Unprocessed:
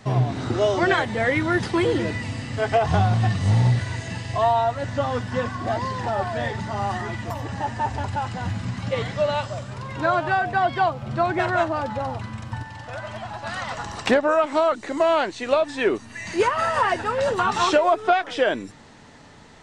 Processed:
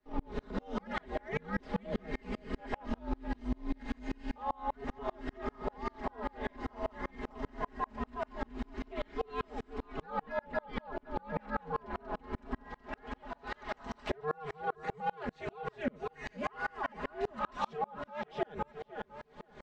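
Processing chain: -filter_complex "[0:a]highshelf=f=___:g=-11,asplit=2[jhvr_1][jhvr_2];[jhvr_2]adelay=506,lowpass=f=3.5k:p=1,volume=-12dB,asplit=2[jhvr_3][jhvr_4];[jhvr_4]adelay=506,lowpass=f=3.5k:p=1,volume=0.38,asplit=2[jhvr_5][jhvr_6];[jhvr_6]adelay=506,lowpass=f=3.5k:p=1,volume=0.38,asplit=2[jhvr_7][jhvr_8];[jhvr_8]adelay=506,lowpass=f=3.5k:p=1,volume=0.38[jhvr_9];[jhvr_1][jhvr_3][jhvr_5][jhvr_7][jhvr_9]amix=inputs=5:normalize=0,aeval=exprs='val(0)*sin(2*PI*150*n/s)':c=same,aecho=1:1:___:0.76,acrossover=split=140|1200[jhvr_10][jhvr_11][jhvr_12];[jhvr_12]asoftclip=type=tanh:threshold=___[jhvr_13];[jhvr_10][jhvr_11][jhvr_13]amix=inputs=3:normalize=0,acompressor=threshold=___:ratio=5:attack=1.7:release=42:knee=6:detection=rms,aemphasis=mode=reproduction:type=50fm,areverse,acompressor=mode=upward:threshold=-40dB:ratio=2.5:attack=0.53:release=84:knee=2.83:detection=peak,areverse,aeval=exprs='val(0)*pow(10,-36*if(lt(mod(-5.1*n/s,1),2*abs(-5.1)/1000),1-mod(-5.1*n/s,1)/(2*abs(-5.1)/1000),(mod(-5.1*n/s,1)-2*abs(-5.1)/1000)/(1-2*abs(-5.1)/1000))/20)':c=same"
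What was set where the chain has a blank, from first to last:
8.4k, 4.8, -23.5dB, -25dB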